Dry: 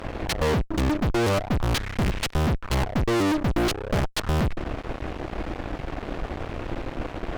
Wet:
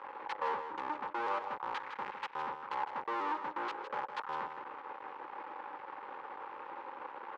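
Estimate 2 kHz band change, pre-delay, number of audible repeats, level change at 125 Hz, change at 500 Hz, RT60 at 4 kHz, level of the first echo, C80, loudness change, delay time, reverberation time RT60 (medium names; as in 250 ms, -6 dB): -10.5 dB, no reverb, 1, under -40 dB, -16.5 dB, no reverb, -9.0 dB, no reverb, -13.0 dB, 159 ms, no reverb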